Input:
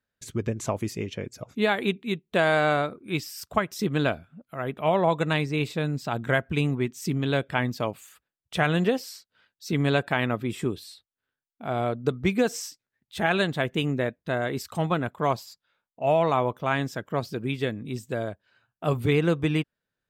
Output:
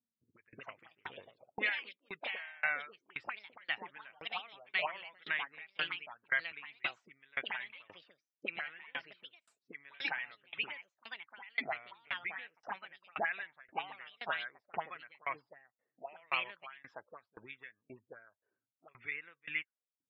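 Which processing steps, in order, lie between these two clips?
bin magnitudes rounded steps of 15 dB; LPF 2700 Hz 12 dB/oct; bell 94 Hz +13 dB 1.1 oct; auto-wah 230–2000 Hz, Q 4.7, up, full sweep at -19.5 dBFS; echoes that change speed 0.287 s, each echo +3 st, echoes 2; spectral gate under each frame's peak -30 dB strong; tilt +3 dB/oct; limiter -24 dBFS, peak gain reduction 7.5 dB; dB-ramp tremolo decaying 1.9 Hz, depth 31 dB; gain +6.5 dB

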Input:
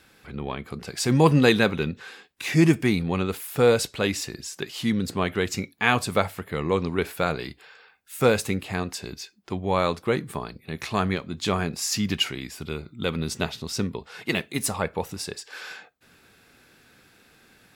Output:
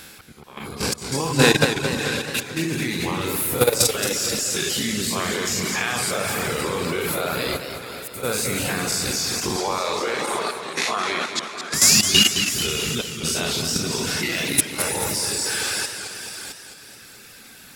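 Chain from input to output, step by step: spectral dilation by 0.12 s; compressor 2:1, threshold -27 dBFS, peak gain reduction 10 dB; 11.59–12.22 painted sound rise 1300–4200 Hz -36 dBFS; high shelf 4100 Hz +11.5 dB; Schroeder reverb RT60 3.3 s, DRR 2.5 dB; auto swell 0.502 s; 9.56–11.74 BPF 360–7600 Hz; thinning echo 0.568 s, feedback 33%, high-pass 770 Hz, level -14 dB; level quantiser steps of 10 dB; reverb removal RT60 1.3 s; warbling echo 0.218 s, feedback 60%, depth 141 cents, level -8.5 dB; gain +7.5 dB

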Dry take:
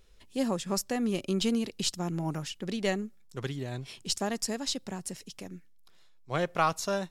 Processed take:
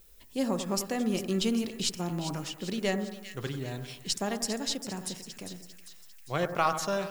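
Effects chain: de-hum 79.78 Hz, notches 24; added noise violet -60 dBFS; split-band echo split 1700 Hz, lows 94 ms, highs 0.399 s, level -10 dB

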